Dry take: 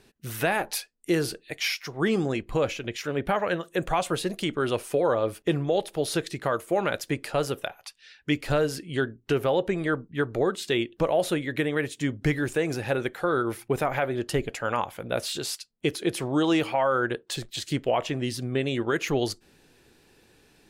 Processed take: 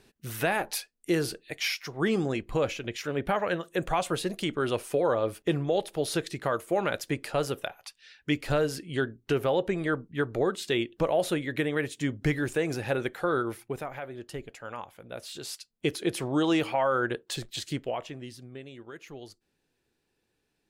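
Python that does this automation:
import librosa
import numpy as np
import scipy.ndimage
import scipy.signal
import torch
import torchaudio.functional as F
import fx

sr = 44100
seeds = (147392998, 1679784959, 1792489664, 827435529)

y = fx.gain(x, sr, db=fx.line((13.36, -2.0), (13.94, -12.0), (15.19, -12.0), (15.74, -2.0), (17.58, -2.0), (18.11, -11.0), (18.75, -18.5)))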